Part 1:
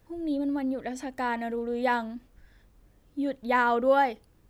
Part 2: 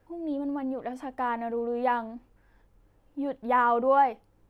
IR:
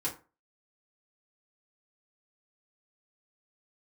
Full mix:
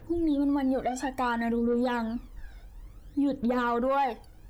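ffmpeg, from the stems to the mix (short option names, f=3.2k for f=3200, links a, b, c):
-filter_complex "[0:a]aphaser=in_gain=1:out_gain=1:delay=1.4:decay=0.74:speed=0.58:type=triangular,volume=2dB,asplit=2[a][b];[b]volume=-16dB[c];[1:a]lowpass=f=3.8k:w=0.5412,lowpass=f=3.8k:w=1.3066,volume=1.5dB[d];[2:a]atrim=start_sample=2205[e];[c][e]afir=irnorm=-1:irlink=0[f];[a][d][f]amix=inputs=3:normalize=0,asoftclip=type=tanh:threshold=-10.5dB,alimiter=limit=-20.5dB:level=0:latency=1:release=187"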